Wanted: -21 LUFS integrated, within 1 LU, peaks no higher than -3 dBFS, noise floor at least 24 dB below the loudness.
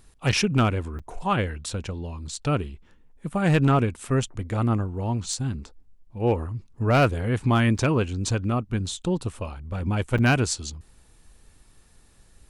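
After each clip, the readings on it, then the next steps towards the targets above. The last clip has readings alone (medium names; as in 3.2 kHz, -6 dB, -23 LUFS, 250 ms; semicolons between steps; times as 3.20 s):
clipped samples 0.4%; clipping level -13.0 dBFS; dropouts 4; longest dropout 5.9 ms; loudness -25.0 LUFS; peak level -13.0 dBFS; loudness target -21.0 LUFS
-> clip repair -13 dBFS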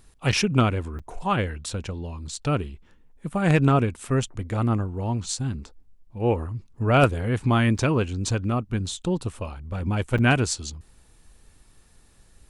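clipped samples 0.0%; dropouts 4; longest dropout 5.9 ms
-> interpolate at 0.32/0.99/7.78/10.18 s, 5.9 ms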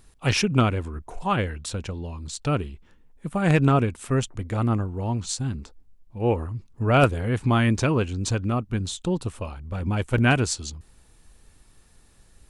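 dropouts 0; loudness -24.5 LUFS; peak level -4.0 dBFS; loudness target -21.0 LUFS
-> trim +3.5 dB; peak limiter -3 dBFS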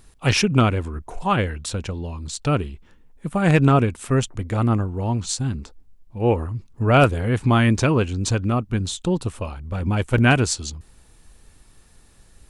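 loudness -21.5 LUFS; peak level -3.0 dBFS; noise floor -53 dBFS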